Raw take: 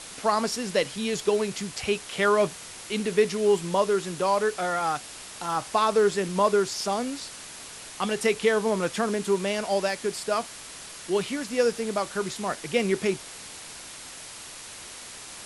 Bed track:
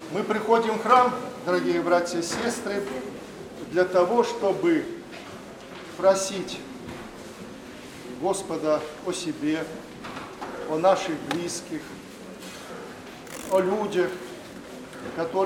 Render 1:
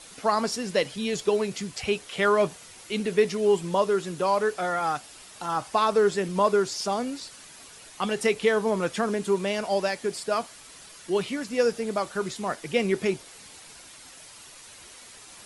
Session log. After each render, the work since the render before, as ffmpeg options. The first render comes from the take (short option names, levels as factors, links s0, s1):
-af "afftdn=nr=8:nf=-42"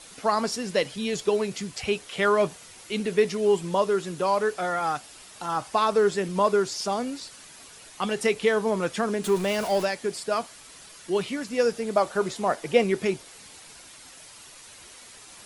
-filter_complex "[0:a]asettb=1/sr,asplit=3[s0][s1][s2];[s0]atrim=end=9.244[s3];[s1]atrim=start=9.24:end=9.85,asetpts=PTS-STARTPTS,afade=t=in:d=0.004:c=qsin,afade=t=out:st=0.606:d=0.004:c=qsin,aeval=exprs='val(0)+0.5*0.0266*sgn(val(0))':c=same[s4];[s2]atrim=start=9.846[s5];[s3][s4]acrossfade=d=0.004:c1=hsin:c2=qsin[s6];[s6][s5]acrossfade=d=0.004:c1=qsin:c2=hsin,asettb=1/sr,asplit=3[s7][s8][s9];[s7]atrim=end=11.964[s10];[s8]atrim=start=11.96:end=12.84,asetpts=PTS-STARTPTS,afade=t=in:d=0.004:c=qsin,afade=t=out:st=0.876:d=0.004:c=qsin,equalizer=f=640:w=0.85:g=7[s11];[s9]atrim=start=12.836[s12];[s10][s11]acrossfade=d=0.004:c1=hsin:c2=qsin[s13];[s13][s12]acrossfade=d=0.004:c1=qsin:c2=hsin"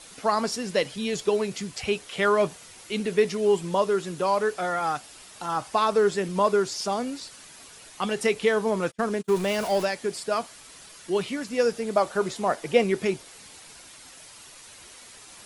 -filter_complex "[0:a]asplit=3[s0][s1][s2];[s0]afade=t=out:st=8.9:d=0.02[s3];[s1]agate=range=0.0126:threshold=0.0355:ratio=16:release=100:detection=peak,afade=t=in:st=8.9:d=0.02,afade=t=out:st=9.34:d=0.02[s4];[s2]afade=t=in:st=9.34:d=0.02[s5];[s3][s4][s5]amix=inputs=3:normalize=0"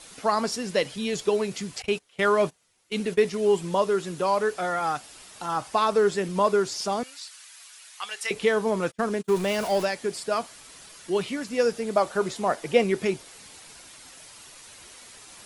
-filter_complex "[0:a]asettb=1/sr,asplit=3[s0][s1][s2];[s0]atrim=end=1.824[s3];[s1]atrim=start=1.82:end=3.45,asetpts=PTS-STARTPTS,afade=t=in:d=0.004:c=qsin,afade=t=out:st=1.626:d=0.004:c=qsin,agate=range=0.0891:threshold=0.02:ratio=16:release=100:detection=peak[s4];[s2]atrim=start=3.446[s5];[s3][s4]acrossfade=d=0.004:c1=hsin:c2=qsin[s6];[s6][s5]acrossfade=d=0.004:c1=qsin:c2=hsin,asettb=1/sr,asplit=3[s7][s8][s9];[s7]atrim=end=7.034[s10];[s8]atrim=start=7.03:end=8.31,asetpts=PTS-STARTPTS,afade=t=in:d=0.004:c=qsin,afade=t=out:st=1.276:d=0.004:c=qsin,highpass=1400[s11];[s9]atrim=start=8.306[s12];[s10][s11]acrossfade=d=0.004:c1=hsin:c2=qsin[s13];[s13][s12]acrossfade=d=0.004:c1=qsin:c2=hsin"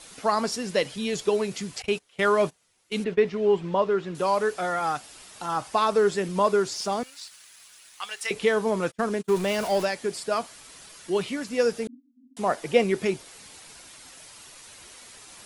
-filter_complex "[0:a]asettb=1/sr,asplit=3[s0][s1][s2];[s0]atrim=end=3.044[s3];[s1]atrim=start=3.04:end=4.15,asetpts=PTS-STARTPTS,afade=t=in:d=0.004:c=qsin,afade=t=out:st=1.106:d=0.004:c=qsin,lowpass=2900[s4];[s2]atrim=start=4.146[s5];[s3][s4]acrossfade=d=0.004:c1=hsin:c2=qsin[s6];[s6][s5]acrossfade=d=0.004:c1=qsin:c2=hsin,asettb=1/sr,asplit=3[s7][s8][s9];[s7]atrim=end=6.754[s10];[s8]atrim=start=6.75:end=8.32,asetpts=PTS-STARTPTS,afade=t=in:d=0.004:c=qsin,afade=t=out:st=1.566:d=0.004:c=qsin,aeval=exprs='sgn(val(0))*max(abs(val(0))-0.00168,0)':c=same[s11];[s9]atrim=start=8.316[s12];[s10][s11]acrossfade=d=0.004:c1=hsin:c2=qsin[s13];[s13][s12]acrossfade=d=0.004:c1=qsin:c2=hsin,asettb=1/sr,asplit=3[s14][s15][s16];[s14]atrim=end=11.874[s17];[s15]atrim=start=11.87:end=12.37,asetpts=PTS-STARTPTS,afade=t=in:d=0.004:c=qsin,afade=t=out:st=0.496:d=0.004:c=qsin,asuperpass=centerf=260:order=12:qfactor=5.1[s18];[s16]atrim=start=12.366[s19];[s17][s18]acrossfade=d=0.004:c1=hsin:c2=qsin[s20];[s20][s19]acrossfade=d=0.004:c1=qsin:c2=hsin"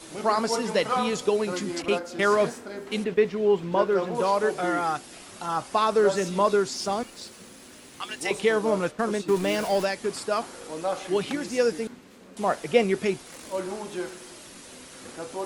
-filter_complex "[1:a]volume=0.355[s0];[0:a][s0]amix=inputs=2:normalize=0"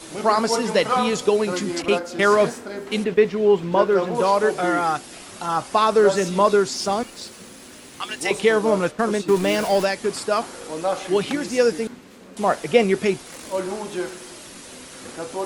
-af "volume=1.78,alimiter=limit=0.794:level=0:latency=1"